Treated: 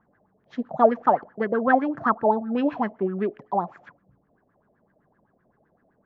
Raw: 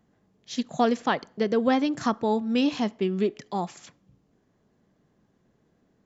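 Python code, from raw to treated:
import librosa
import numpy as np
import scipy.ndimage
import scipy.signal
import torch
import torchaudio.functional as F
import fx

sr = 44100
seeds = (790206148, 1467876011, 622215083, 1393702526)

y = fx.filter_lfo_lowpass(x, sr, shape='sine', hz=7.8, low_hz=590.0, high_hz=1700.0, q=6.8)
y = y * 10.0 ** (-2.0 / 20.0)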